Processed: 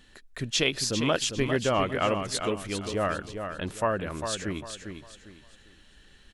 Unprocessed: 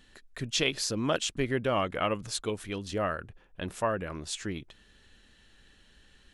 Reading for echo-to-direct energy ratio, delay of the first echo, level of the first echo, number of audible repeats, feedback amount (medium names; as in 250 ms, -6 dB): -7.0 dB, 401 ms, -7.5 dB, 3, 30%